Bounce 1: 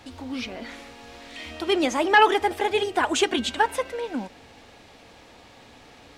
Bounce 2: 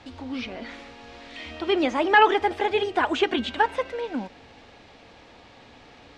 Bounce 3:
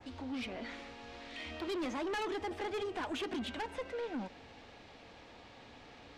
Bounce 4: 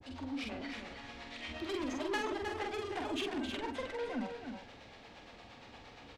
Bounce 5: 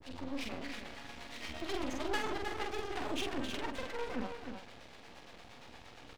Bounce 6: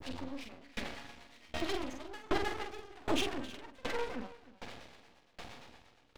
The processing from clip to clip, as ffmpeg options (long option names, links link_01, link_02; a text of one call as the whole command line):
ffmpeg -i in.wav -filter_complex "[0:a]acrossover=split=3800[link_01][link_02];[link_02]acompressor=threshold=-41dB:ratio=4:attack=1:release=60[link_03];[link_01][link_03]amix=inputs=2:normalize=0,lowpass=5100" out.wav
ffmpeg -i in.wav -filter_complex "[0:a]adynamicequalizer=threshold=0.01:dfrequency=3700:dqfactor=0.82:tfrequency=3700:tqfactor=0.82:attack=5:release=100:ratio=0.375:range=2.5:mode=cutabove:tftype=bell,acrossover=split=380|3000[link_01][link_02][link_03];[link_02]acompressor=threshold=-27dB:ratio=4[link_04];[link_01][link_04][link_03]amix=inputs=3:normalize=0,asoftclip=type=tanh:threshold=-29dB,volume=-5dB" out.wav
ffmpeg -i in.wav -filter_complex "[0:a]acrossover=split=420[link_01][link_02];[link_01]aeval=exprs='val(0)*(1-1/2+1/2*cos(2*PI*8.6*n/s))':channel_layout=same[link_03];[link_02]aeval=exprs='val(0)*(1-1/2-1/2*cos(2*PI*8.6*n/s))':channel_layout=same[link_04];[link_03][link_04]amix=inputs=2:normalize=0,asplit=2[link_05][link_06];[link_06]adelay=46,volume=-3.5dB[link_07];[link_05][link_07]amix=inputs=2:normalize=0,aecho=1:1:311:0.447,volume=3.5dB" out.wav
ffmpeg -i in.wav -af "aeval=exprs='max(val(0),0)':channel_layout=same,volume=4dB" out.wav
ffmpeg -i in.wav -af "aeval=exprs='val(0)*pow(10,-27*if(lt(mod(1.3*n/s,1),2*abs(1.3)/1000),1-mod(1.3*n/s,1)/(2*abs(1.3)/1000),(mod(1.3*n/s,1)-2*abs(1.3)/1000)/(1-2*abs(1.3)/1000))/20)':channel_layout=same,volume=8.5dB" out.wav